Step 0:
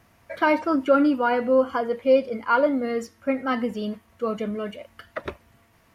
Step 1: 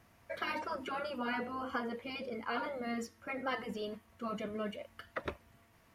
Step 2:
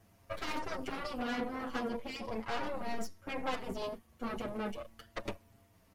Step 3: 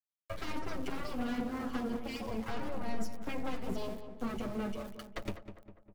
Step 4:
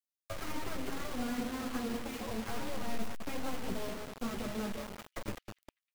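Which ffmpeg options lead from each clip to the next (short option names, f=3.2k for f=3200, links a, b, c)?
-af "afftfilt=real='re*lt(hypot(re,im),0.355)':imag='im*lt(hypot(re,im),0.355)':win_size=1024:overlap=0.75,volume=-6dB"
-filter_complex "[0:a]equalizer=f=1.7k:t=o:w=2.1:g=-7.5,aeval=exprs='0.0531*(cos(1*acos(clip(val(0)/0.0531,-1,1)))-cos(1*PI/2))+0.0106*(cos(8*acos(clip(val(0)/0.0531,-1,1)))-cos(8*PI/2))':c=same,asplit=2[a][b];[b]adelay=6.9,afreqshift=-0.37[c];[a][c]amix=inputs=2:normalize=1,volume=4.5dB"
-filter_complex "[0:a]acrossover=split=300[a][b];[b]acompressor=threshold=-45dB:ratio=6[c];[a][c]amix=inputs=2:normalize=0,aeval=exprs='val(0)*gte(abs(val(0)),0.00224)':c=same,asplit=2[d][e];[e]adelay=201,lowpass=f=1.9k:p=1,volume=-9.5dB,asplit=2[f][g];[g]adelay=201,lowpass=f=1.9k:p=1,volume=0.52,asplit=2[h][i];[i]adelay=201,lowpass=f=1.9k:p=1,volume=0.52,asplit=2[j][k];[k]adelay=201,lowpass=f=1.9k:p=1,volume=0.52,asplit=2[l][m];[m]adelay=201,lowpass=f=1.9k:p=1,volume=0.52,asplit=2[n][o];[o]adelay=201,lowpass=f=1.9k:p=1,volume=0.52[p];[d][f][h][j][l][n][p]amix=inputs=7:normalize=0,volume=4.5dB"
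-filter_complex "[0:a]acrossover=split=2600[a][b];[a]acrusher=bits=6:mix=0:aa=0.000001[c];[b]aeval=exprs='(mod(316*val(0)+1,2)-1)/316':c=same[d];[c][d]amix=inputs=2:normalize=0,volume=-1dB"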